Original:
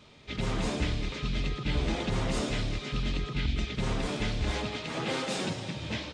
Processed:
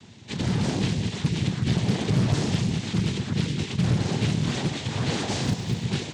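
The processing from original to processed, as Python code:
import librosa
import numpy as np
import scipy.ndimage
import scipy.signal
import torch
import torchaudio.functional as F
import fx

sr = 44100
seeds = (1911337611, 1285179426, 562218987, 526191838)

p1 = fx.noise_vocoder(x, sr, seeds[0], bands=6)
p2 = fx.bass_treble(p1, sr, bass_db=14, treble_db=8)
p3 = fx.comb_fb(p2, sr, f0_hz=240.0, decay_s=1.1, harmonics='all', damping=0.0, mix_pct=50)
p4 = fx.fold_sine(p3, sr, drive_db=7, ceiling_db=-12.5)
p5 = p3 + (p4 * librosa.db_to_amplitude(-7.5))
p6 = scipy.signal.sosfilt(scipy.signal.cheby1(2, 1.0, 5300.0, 'lowpass', fs=sr, output='sos'), p5)
p7 = fx.quant_float(p6, sr, bits=4, at=(5.43, 5.83), fade=0.02)
y = fx.doppler_dist(p7, sr, depth_ms=0.52)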